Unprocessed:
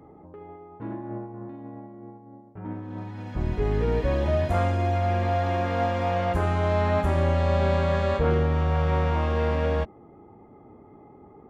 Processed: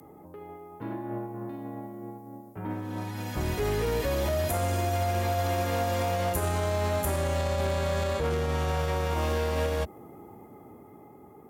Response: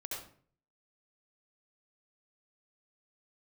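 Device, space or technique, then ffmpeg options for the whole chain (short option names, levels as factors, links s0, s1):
FM broadcast chain: -filter_complex "[0:a]highpass=80,dynaudnorm=f=210:g=11:m=1.58,acrossover=split=120|290|650|4300[s0][s1][s2][s3][s4];[s0]acompressor=threshold=0.0501:ratio=4[s5];[s1]acompressor=threshold=0.00891:ratio=4[s6];[s2]acompressor=threshold=0.0447:ratio=4[s7];[s3]acompressor=threshold=0.0224:ratio=4[s8];[s4]acompressor=threshold=0.00224:ratio=4[s9];[s5][s6][s7][s8][s9]amix=inputs=5:normalize=0,aemphasis=mode=production:type=50fm,alimiter=limit=0.119:level=0:latency=1:release=51,asoftclip=type=hard:threshold=0.0794,lowpass=f=15000:w=0.5412,lowpass=f=15000:w=1.3066,aemphasis=mode=production:type=50fm"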